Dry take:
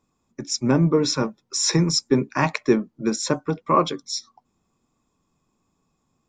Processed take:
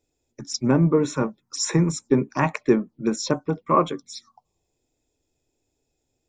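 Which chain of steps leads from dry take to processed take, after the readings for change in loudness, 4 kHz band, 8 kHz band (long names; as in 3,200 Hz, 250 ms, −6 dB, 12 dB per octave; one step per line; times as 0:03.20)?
−0.5 dB, −7.5 dB, −4.5 dB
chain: phaser swept by the level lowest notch 190 Hz, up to 4,900 Hz, full sweep at −19 dBFS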